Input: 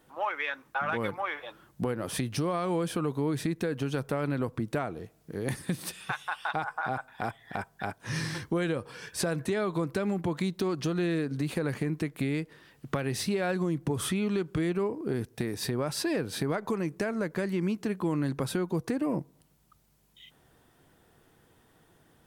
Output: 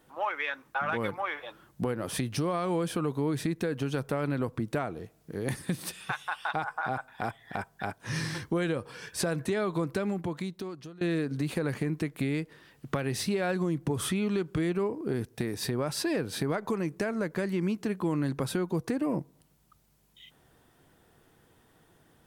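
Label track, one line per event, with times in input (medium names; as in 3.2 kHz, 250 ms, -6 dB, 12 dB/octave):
9.930000	11.010000	fade out, to -23 dB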